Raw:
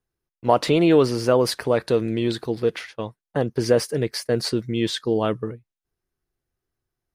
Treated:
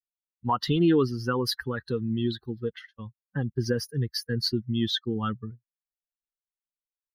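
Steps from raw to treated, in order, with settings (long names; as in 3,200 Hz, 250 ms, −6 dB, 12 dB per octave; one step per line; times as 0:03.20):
spectral dynamics exaggerated over time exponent 2
in parallel at −1 dB: downward compressor, threshold −30 dBFS, peak gain reduction 15.5 dB
on the sum: phaser with its sweep stopped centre 2,300 Hz, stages 6
one half of a high-frequency compander decoder only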